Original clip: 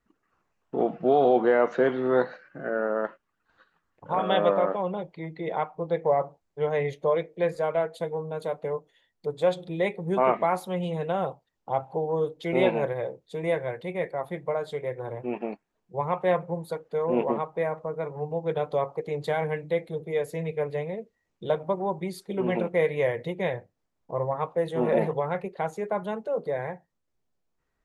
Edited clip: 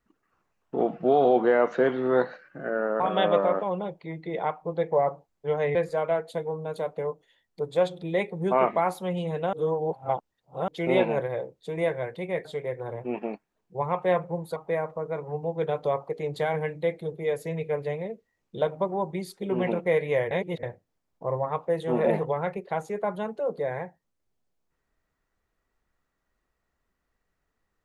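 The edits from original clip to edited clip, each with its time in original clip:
3–4.13 cut
6.88–7.41 cut
11.19–12.34 reverse
14.11–14.64 cut
16.75–17.44 cut
23.19–23.51 reverse

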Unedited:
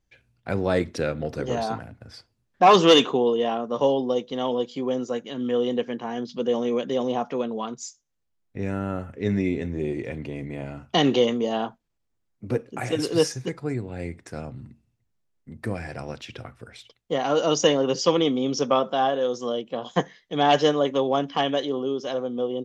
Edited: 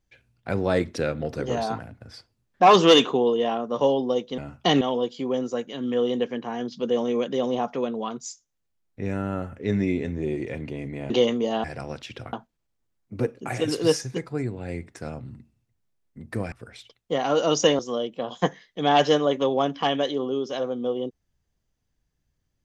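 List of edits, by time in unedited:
10.67–11.1 move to 4.38
15.83–16.52 move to 11.64
17.79–19.33 cut

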